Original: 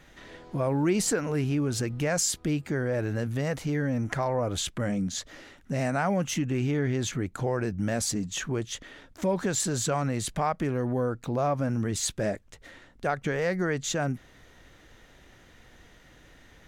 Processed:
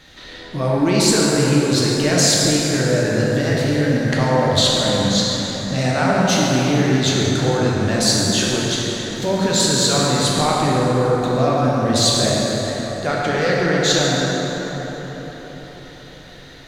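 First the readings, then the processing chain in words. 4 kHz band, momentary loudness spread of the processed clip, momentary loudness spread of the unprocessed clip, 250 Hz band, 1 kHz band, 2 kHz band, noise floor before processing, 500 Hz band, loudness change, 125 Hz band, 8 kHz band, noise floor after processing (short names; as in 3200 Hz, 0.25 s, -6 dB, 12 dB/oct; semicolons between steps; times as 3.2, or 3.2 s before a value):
+19.0 dB, 9 LU, 6 LU, +11.0 dB, +11.5 dB, +12.0 dB, -56 dBFS, +11.0 dB, +11.5 dB, +10.0 dB, +11.5 dB, -39 dBFS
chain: bell 4100 Hz +14 dB 0.68 oct; notches 60/120 Hz; plate-style reverb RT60 4.9 s, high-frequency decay 0.5×, DRR -5.5 dB; gain +4 dB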